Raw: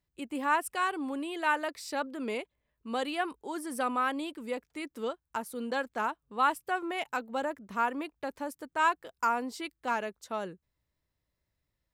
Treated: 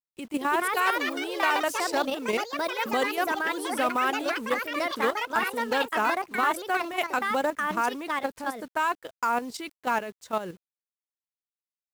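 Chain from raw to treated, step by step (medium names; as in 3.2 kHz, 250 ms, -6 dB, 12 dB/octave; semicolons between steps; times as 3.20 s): level held to a coarse grid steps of 11 dB; companded quantiser 6-bit; ever faster or slower copies 263 ms, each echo +4 st, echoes 3; trim +8.5 dB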